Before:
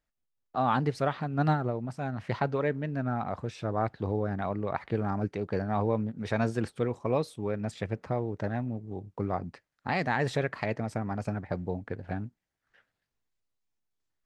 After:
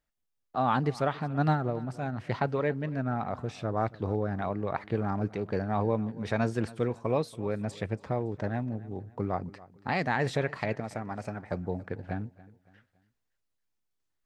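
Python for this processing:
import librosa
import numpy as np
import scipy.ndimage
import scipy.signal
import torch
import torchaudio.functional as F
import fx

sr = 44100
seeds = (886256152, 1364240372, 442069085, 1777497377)

p1 = fx.low_shelf(x, sr, hz=320.0, db=-7.5, at=(10.8, 11.52))
y = p1 + fx.echo_feedback(p1, sr, ms=281, feedback_pct=39, wet_db=-20, dry=0)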